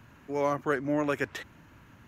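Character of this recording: noise floor -56 dBFS; spectral tilt -2.5 dB/octave

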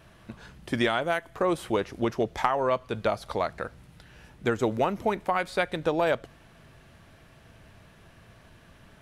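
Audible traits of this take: noise floor -55 dBFS; spectral tilt -4.0 dB/octave

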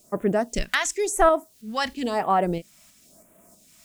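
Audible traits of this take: a quantiser's noise floor 10-bit, dither triangular; phasing stages 2, 0.97 Hz, lowest notch 410–4600 Hz; tremolo saw up 3.1 Hz, depth 40%

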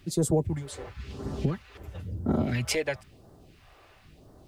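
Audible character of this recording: a quantiser's noise floor 12-bit, dither none; phasing stages 2, 0.98 Hz, lowest notch 160–2400 Hz

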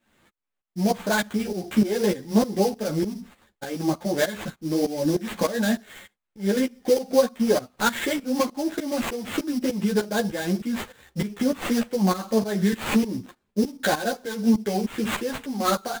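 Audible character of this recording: tremolo saw up 3.3 Hz, depth 85%; aliases and images of a low sample rate 5.4 kHz, jitter 20%; a shimmering, thickened sound

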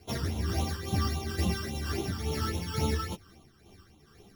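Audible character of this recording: a buzz of ramps at a fixed pitch in blocks of 8 samples; phasing stages 12, 3.6 Hz, lowest notch 680–1700 Hz; tremolo triangle 2.2 Hz, depth 55%; a shimmering, thickened sound

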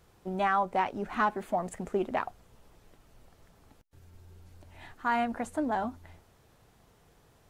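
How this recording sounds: noise floor -63 dBFS; spectral tilt -4.0 dB/octave

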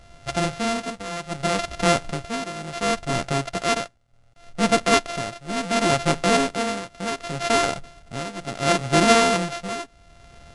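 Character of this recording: a buzz of ramps at a fixed pitch in blocks of 64 samples; tremolo triangle 0.69 Hz, depth 85%; aliases and images of a low sample rate 8.6 kHz, jitter 0%; Vorbis

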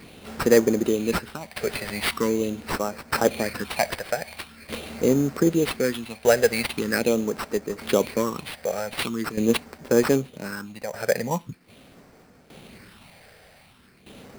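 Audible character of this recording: tremolo saw down 0.64 Hz, depth 75%; phasing stages 6, 0.43 Hz, lowest notch 280–3500 Hz; aliases and images of a low sample rate 6.7 kHz, jitter 0%

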